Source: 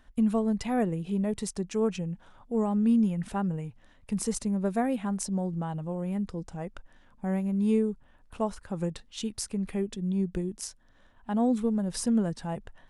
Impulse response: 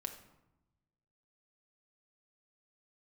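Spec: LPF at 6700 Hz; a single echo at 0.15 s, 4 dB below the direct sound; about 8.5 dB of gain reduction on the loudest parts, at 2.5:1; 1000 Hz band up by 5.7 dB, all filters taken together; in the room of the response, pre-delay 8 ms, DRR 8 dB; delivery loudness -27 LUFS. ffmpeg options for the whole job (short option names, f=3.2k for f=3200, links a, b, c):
-filter_complex "[0:a]lowpass=6.7k,equalizer=f=1k:t=o:g=8,acompressor=threshold=-33dB:ratio=2.5,aecho=1:1:150:0.631,asplit=2[a][b];[1:a]atrim=start_sample=2205,adelay=8[c];[b][c]afir=irnorm=-1:irlink=0,volume=-6.5dB[d];[a][d]amix=inputs=2:normalize=0,volume=7dB"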